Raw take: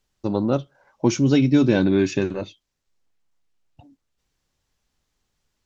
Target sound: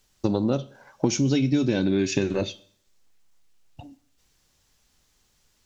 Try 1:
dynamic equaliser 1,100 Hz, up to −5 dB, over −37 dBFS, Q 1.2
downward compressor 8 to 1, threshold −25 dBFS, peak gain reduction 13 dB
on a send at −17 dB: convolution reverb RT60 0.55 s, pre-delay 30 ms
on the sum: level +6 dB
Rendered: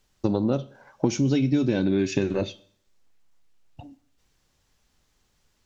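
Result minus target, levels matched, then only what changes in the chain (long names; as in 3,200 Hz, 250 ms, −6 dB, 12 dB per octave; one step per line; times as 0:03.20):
8,000 Hz band −5.0 dB
add after downward compressor: high-shelf EQ 3,400 Hz +7 dB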